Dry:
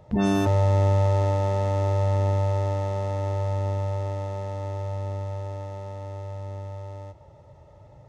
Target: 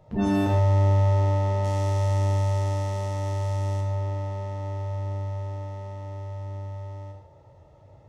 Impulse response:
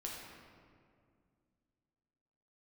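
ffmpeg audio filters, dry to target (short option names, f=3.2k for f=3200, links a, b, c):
-filter_complex "[0:a]asettb=1/sr,asplit=3[a][b][c];[a]atrim=end=1.644[d];[b]atrim=start=1.64:end=3.81,asetpts=PTS-STARTPTS,afade=t=in:d=0.004:c=qsin,afade=t=out:st=2.166:d=0.004:c=qsin,aemphasis=mode=production:type=75fm[e];[c]atrim=start=3.806[f];[d][e]acrossfade=d=0.004:c1=hsin:c2=qsin[g];[g][f]acrossfade=d=0.004:c1=qsin:c2=hsin[h];[1:a]atrim=start_sample=2205,atrim=end_sample=6615[i];[h][i]afir=irnorm=-1:irlink=0"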